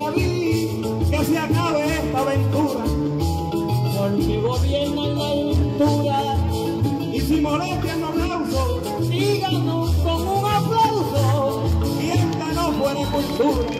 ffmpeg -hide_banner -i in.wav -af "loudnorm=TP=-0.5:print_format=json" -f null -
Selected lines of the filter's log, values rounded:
"input_i" : "-21.0",
"input_tp" : "-8.9",
"input_lra" : "1.3",
"input_thresh" : "-31.0",